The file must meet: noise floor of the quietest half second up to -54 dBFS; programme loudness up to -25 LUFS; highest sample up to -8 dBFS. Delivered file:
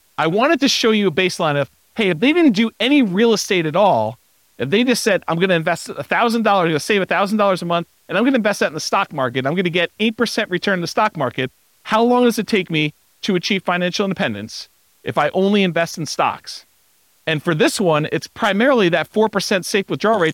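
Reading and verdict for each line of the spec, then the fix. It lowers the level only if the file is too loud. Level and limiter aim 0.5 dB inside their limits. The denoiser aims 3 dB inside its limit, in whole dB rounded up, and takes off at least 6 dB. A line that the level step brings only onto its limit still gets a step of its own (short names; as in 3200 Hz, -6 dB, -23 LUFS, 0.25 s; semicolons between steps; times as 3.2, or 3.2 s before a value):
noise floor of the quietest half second -57 dBFS: OK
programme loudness -17.5 LUFS: fail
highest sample -4.5 dBFS: fail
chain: gain -8 dB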